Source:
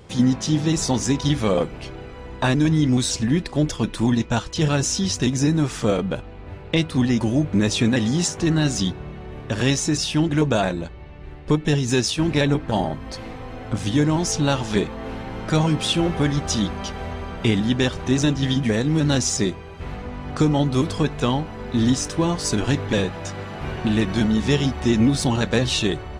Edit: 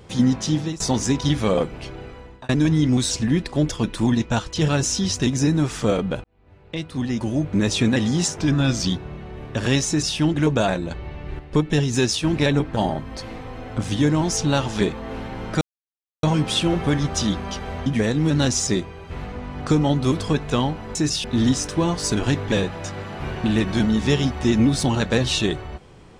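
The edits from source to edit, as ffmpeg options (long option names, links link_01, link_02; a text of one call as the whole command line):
ffmpeg -i in.wav -filter_complex "[0:a]asplit=12[link_01][link_02][link_03][link_04][link_05][link_06][link_07][link_08][link_09][link_10][link_11][link_12];[link_01]atrim=end=0.8,asetpts=PTS-STARTPTS,afade=type=out:start_time=0.41:duration=0.39:curve=qsin:silence=0.0891251[link_13];[link_02]atrim=start=0.8:end=2.49,asetpts=PTS-STARTPTS,afade=type=in:duration=0.004:curve=hsin:silence=0.0891251,afade=type=out:start_time=1.28:duration=0.41[link_14];[link_03]atrim=start=2.49:end=6.24,asetpts=PTS-STARTPTS,afade=type=in:duration=0.004:curve=hsin,afade=type=out:start_time=3.746:duration=0.004:curve=hsin[link_15];[link_04]atrim=start=6.24:end=8.364,asetpts=PTS-STARTPTS,afade=type=in:duration=1.52[link_16];[link_05]atrim=start=8.36:end=8.82,asetpts=PTS-STARTPTS,asetrate=39690,aresample=44100[link_17];[link_06]atrim=start=8.816:end=10.862[link_18];[link_07]atrim=start=10.858:end=11.342,asetpts=PTS-STARTPTS,volume=6.5dB[link_19];[link_08]atrim=start=11.338:end=15.56,asetpts=PTS-STARTPTS,afade=type=out:start_time=4.218:duration=0.004:curve=hsin,apad=pad_dur=0.62[link_20];[link_09]atrim=start=15.56:end=17.192,asetpts=PTS-STARTPTS,afade=type=in:duration=0.004:curve=hsin[link_21];[link_10]atrim=start=18.558:end=21.652[link_22];[link_11]atrim=start=9.828:end=10.122[link_23];[link_12]atrim=start=21.648[link_24];[link_13][link_14][link_15][link_16]concat=n=4:v=0:a=1[link_25];[link_25][link_17]acrossfade=duration=0.004:curve1=hsin:curve2=hsin[link_26];[link_26][link_18]acrossfade=duration=0.004:curve1=hsin:curve2=hsin[link_27];[link_27][link_19]acrossfade=duration=0.004:curve1=hsin:curve2=hsin[link_28];[link_20][link_21]concat=n=2:v=0:a=1[link_29];[link_28][link_29]acrossfade=duration=0.004:curve1=hsin:curve2=hsin[link_30];[link_30][link_22]acrossfade=duration=0.004:curve1=hsin:curve2=hsin[link_31];[link_31][link_23]acrossfade=duration=0.004:curve1=hsin:curve2=hsin[link_32];[link_32][link_24]acrossfade=duration=0.004:curve1=hsin:curve2=hsin" out.wav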